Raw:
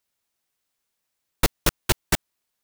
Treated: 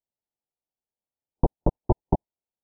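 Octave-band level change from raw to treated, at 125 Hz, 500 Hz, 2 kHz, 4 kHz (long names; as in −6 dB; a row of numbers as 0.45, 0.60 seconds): +3.0 dB, +2.0 dB, below −35 dB, below −40 dB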